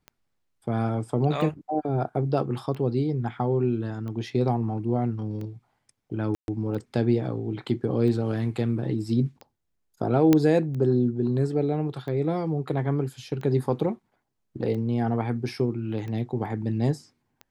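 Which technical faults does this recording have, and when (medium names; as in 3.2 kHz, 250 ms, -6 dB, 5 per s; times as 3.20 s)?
tick 45 rpm -26 dBFS
6.35–6.48 s: dropout 131 ms
10.33 s: pop -7 dBFS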